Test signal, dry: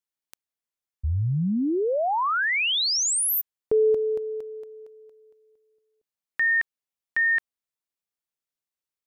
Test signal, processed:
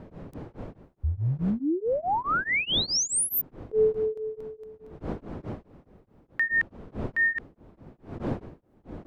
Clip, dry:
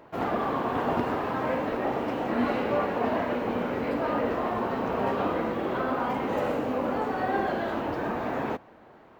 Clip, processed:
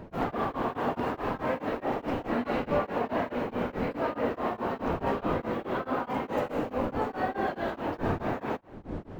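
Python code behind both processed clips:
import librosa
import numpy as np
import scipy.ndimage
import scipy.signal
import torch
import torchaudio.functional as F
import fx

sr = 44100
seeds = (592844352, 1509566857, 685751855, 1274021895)

y = fx.dmg_wind(x, sr, seeds[0], corner_hz=350.0, level_db=-38.0)
y = y * np.abs(np.cos(np.pi * 4.7 * np.arange(len(y)) / sr))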